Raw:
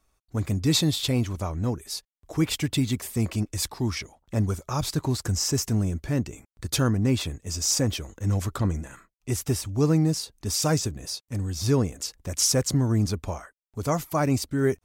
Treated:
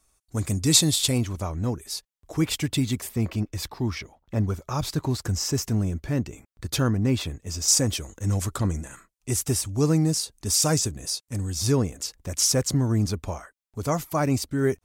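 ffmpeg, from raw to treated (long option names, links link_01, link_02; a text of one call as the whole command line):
ffmpeg -i in.wav -af "asetnsamples=nb_out_samples=441:pad=0,asendcmd='1.18 equalizer g 1.5;3.09 equalizer g -9.5;4.62 equalizer g -3;7.68 equalizer g 7.5;11.72 equalizer g 1',equalizer=frequency=8800:width_type=o:width=1.3:gain=12" out.wav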